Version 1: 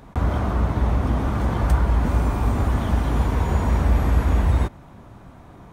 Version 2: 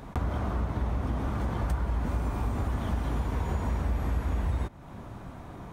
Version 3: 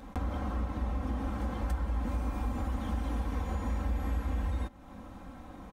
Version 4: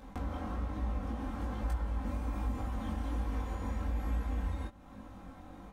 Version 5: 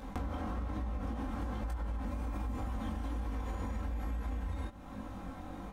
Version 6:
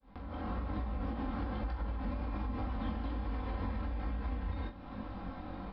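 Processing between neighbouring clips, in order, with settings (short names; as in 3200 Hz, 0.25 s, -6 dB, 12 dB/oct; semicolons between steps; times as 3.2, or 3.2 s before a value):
compressor 2.5:1, threshold -33 dBFS, peak gain reduction 13.5 dB; gain +1.5 dB
comb 3.8 ms, depth 80%; gain -5.5 dB
chorus 1.2 Hz, delay 19 ms, depth 3.9 ms
limiter -29.5 dBFS, peak gain reduction 5 dB; compressor, threshold -39 dBFS, peak gain reduction 6.5 dB; gain +5.5 dB
opening faded in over 0.54 s; downsampling 11025 Hz; flutter echo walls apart 7.4 m, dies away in 0.24 s; gain +1 dB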